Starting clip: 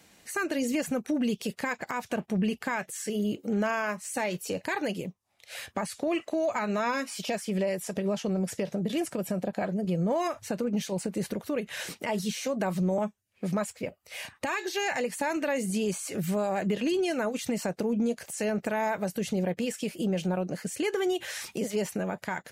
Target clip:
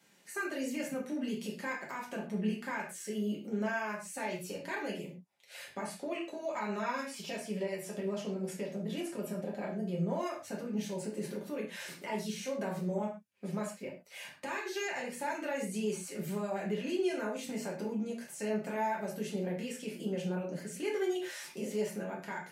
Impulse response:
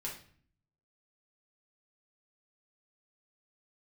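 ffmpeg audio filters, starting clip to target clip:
-filter_complex "[0:a]highpass=170[a];[1:a]atrim=start_sample=2205,afade=t=out:st=0.19:d=0.01,atrim=end_sample=8820[b];[a][b]afir=irnorm=-1:irlink=0,volume=-6.5dB"

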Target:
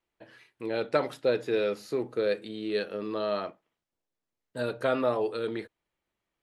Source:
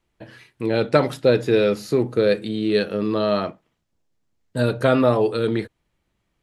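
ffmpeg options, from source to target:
-af "bass=f=250:g=-11,treble=f=4k:g=-3,volume=-8dB"

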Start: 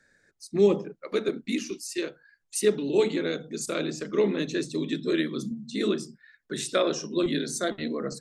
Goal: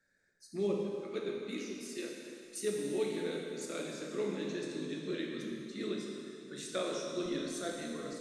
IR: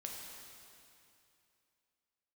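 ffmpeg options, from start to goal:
-filter_complex "[1:a]atrim=start_sample=2205[a];[0:a][a]afir=irnorm=-1:irlink=0,volume=-8dB"

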